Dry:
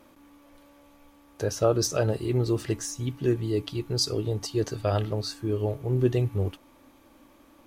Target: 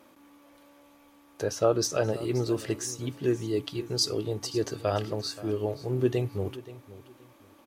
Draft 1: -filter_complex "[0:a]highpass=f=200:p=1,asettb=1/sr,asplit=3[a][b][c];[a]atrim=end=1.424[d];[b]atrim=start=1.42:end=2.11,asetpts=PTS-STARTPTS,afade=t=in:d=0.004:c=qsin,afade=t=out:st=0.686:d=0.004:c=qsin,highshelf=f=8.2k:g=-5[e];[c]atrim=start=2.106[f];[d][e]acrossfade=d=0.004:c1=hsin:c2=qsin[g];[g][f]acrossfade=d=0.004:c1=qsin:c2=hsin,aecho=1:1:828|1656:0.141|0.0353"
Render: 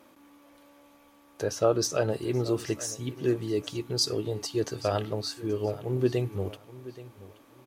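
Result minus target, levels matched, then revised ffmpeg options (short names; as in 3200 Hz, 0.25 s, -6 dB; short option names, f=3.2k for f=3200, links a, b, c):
echo 0.301 s late
-filter_complex "[0:a]highpass=f=200:p=1,asettb=1/sr,asplit=3[a][b][c];[a]atrim=end=1.424[d];[b]atrim=start=1.42:end=2.11,asetpts=PTS-STARTPTS,afade=t=in:d=0.004:c=qsin,afade=t=out:st=0.686:d=0.004:c=qsin,highshelf=f=8.2k:g=-5[e];[c]atrim=start=2.106[f];[d][e]acrossfade=d=0.004:c1=hsin:c2=qsin[g];[g][f]acrossfade=d=0.004:c1=qsin:c2=hsin,aecho=1:1:527|1054:0.141|0.0353"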